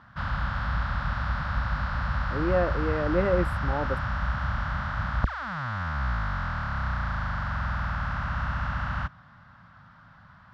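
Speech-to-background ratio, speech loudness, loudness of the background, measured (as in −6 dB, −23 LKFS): 1.5 dB, −28.5 LKFS, −30.0 LKFS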